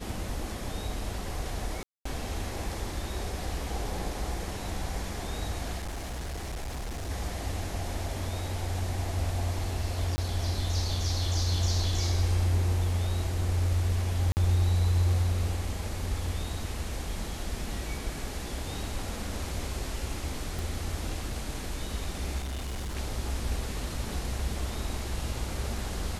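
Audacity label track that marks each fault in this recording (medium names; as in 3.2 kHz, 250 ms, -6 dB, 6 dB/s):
1.830000	2.050000	dropout 224 ms
5.770000	7.100000	clipped -32 dBFS
10.160000	10.180000	dropout 20 ms
14.320000	14.370000	dropout 49 ms
20.590000	20.590000	pop
22.380000	22.970000	clipped -31 dBFS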